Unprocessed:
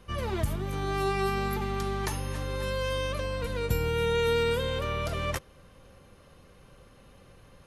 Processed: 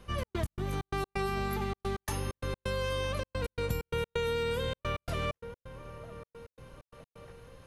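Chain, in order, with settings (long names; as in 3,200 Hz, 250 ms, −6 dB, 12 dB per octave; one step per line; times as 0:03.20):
delay with a low-pass on its return 969 ms, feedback 46%, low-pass 1,500 Hz, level −15.5 dB
gate pattern "xx.x.xx.x.xxx" 130 BPM −60 dB
downward compressor, threshold −28 dBFS, peak gain reduction 6.5 dB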